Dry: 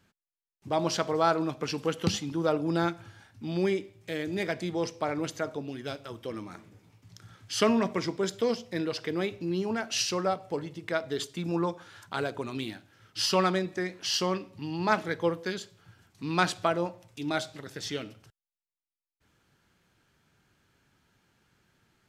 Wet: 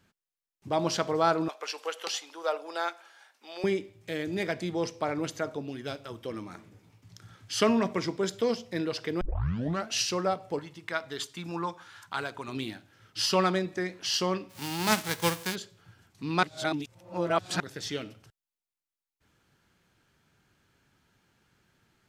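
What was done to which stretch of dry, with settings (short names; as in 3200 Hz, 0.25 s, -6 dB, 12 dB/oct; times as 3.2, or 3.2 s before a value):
1.48–3.64 HPF 540 Hz 24 dB/oct
9.21 tape start 0.67 s
10.59–12.48 resonant low shelf 730 Hz -6 dB, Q 1.5
14.49–15.54 spectral whitening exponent 0.3
16.43–17.6 reverse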